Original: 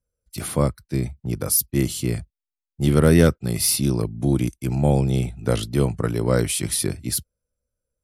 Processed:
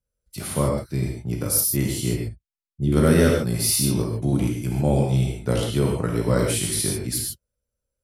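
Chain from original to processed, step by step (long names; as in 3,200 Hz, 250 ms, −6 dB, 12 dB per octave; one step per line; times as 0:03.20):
0:02.13–0:02.92: spectral envelope exaggerated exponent 1.5
reverb whose tail is shaped and stops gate 170 ms flat, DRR −1 dB
level −3.5 dB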